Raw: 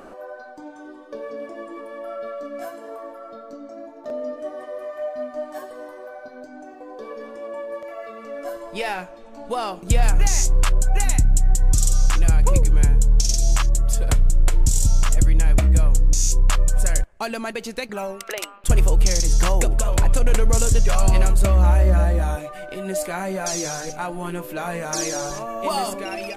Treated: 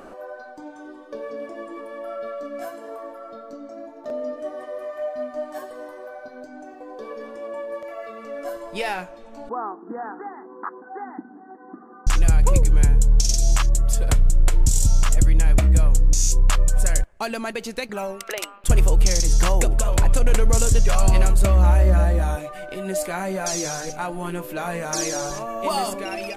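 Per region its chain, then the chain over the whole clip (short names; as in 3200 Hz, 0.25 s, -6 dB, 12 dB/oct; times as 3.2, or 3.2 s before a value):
9.49–12.07 brick-wall FIR band-pass 180–2200 Hz + fixed phaser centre 580 Hz, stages 6
whole clip: dry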